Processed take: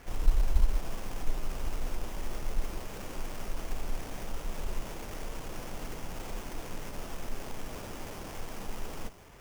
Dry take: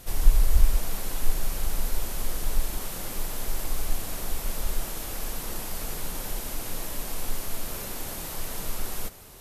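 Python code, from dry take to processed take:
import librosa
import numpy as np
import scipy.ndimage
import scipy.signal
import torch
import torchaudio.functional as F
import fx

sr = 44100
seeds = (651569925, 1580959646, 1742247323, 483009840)

y = fx.diode_clip(x, sr, knee_db=-6.5)
y = fx.sample_hold(y, sr, seeds[0], rate_hz=4100.0, jitter_pct=20)
y = fx.dynamic_eq(y, sr, hz=1700.0, q=0.92, threshold_db=-53.0, ratio=4.0, max_db=-7)
y = y * 10.0 ** (-4.5 / 20.0)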